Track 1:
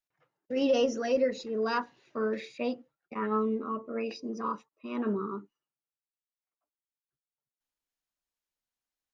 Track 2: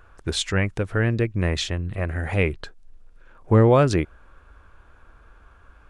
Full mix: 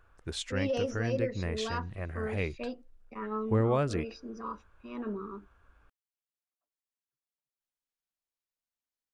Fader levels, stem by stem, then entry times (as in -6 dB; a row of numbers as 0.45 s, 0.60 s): -6.0 dB, -11.5 dB; 0.00 s, 0.00 s